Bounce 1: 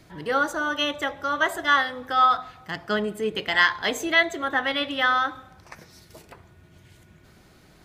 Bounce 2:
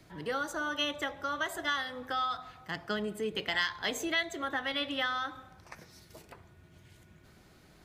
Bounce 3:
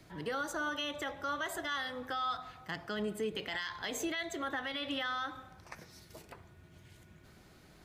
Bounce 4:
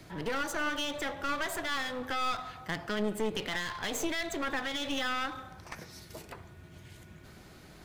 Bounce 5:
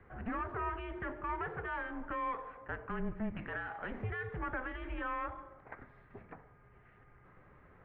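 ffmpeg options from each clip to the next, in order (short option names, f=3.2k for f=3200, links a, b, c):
-filter_complex "[0:a]acrossover=split=180|3000[a][b][c];[b]acompressor=threshold=-26dB:ratio=6[d];[a][d][c]amix=inputs=3:normalize=0,volume=-5dB"
-af "alimiter=level_in=3dB:limit=-24dB:level=0:latency=1:release=50,volume=-3dB"
-af "aeval=exprs='clip(val(0),-1,0.00531)':c=same,volume=6.5dB"
-af "highpass=f=200:t=q:w=0.5412,highpass=f=200:t=q:w=1.307,lowpass=f=2.3k:t=q:w=0.5176,lowpass=f=2.3k:t=q:w=0.7071,lowpass=f=2.3k:t=q:w=1.932,afreqshift=-230,volume=-4dB"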